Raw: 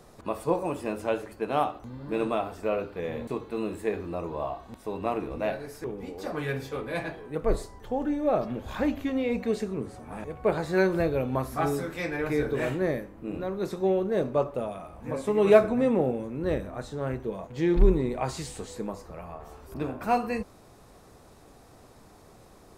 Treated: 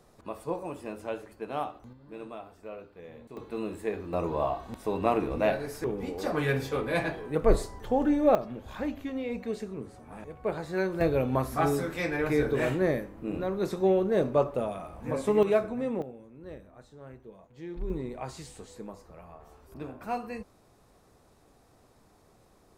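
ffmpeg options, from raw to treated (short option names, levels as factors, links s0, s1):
-af "asetnsamples=n=441:p=0,asendcmd='1.93 volume volume -14dB;3.37 volume volume -3dB;4.13 volume volume 3.5dB;8.35 volume volume -6dB;11.01 volume volume 1dB;15.43 volume volume -7.5dB;16.02 volume volume -16dB;17.9 volume volume -8dB',volume=0.447"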